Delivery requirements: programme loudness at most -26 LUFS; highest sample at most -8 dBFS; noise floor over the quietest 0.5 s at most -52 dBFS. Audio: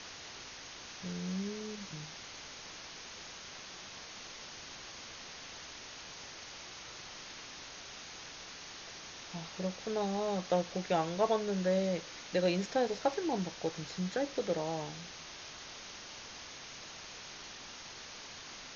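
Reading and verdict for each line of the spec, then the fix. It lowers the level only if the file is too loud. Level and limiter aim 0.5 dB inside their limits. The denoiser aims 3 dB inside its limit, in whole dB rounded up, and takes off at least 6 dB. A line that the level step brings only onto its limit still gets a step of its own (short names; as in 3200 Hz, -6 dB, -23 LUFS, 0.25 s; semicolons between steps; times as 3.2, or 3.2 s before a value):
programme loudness -38.5 LUFS: OK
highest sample -17.0 dBFS: OK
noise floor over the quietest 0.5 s -48 dBFS: fail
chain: denoiser 7 dB, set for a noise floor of -48 dBFS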